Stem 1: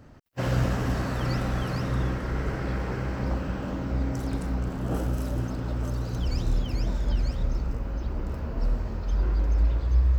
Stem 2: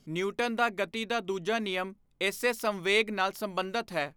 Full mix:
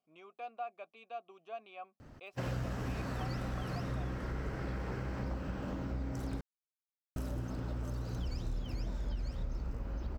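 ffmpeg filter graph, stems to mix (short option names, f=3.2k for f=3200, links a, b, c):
-filter_complex "[0:a]adelay=2000,volume=-3.5dB,asplit=3[a][b][c];[a]atrim=end=6.41,asetpts=PTS-STARTPTS,afade=t=out:st=6.406:d=0.004:c=hsin[d];[b]atrim=start=6.41:end=7.16,asetpts=PTS-STARTPTS,volume=0[e];[c]atrim=start=7.16,asetpts=PTS-STARTPTS,afade=t=in:d=0.004:c=hsin[f];[d][e][f]concat=n=3:v=0:a=1[g];[1:a]asplit=3[h][i][j];[h]bandpass=f=730:t=q:w=8,volume=0dB[k];[i]bandpass=f=1.09k:t=q:w=8,volume=-6dB[l];[j]bandpass=f=2.44k:t=q:w=8,volume=-9dB[m];[k][l][m]amix=inputs=3:normalize=0,volume=-7dB[n];[g][n]amix=inputs=2:normalize=0,acompressor=threshold=-36dB:ratio=3"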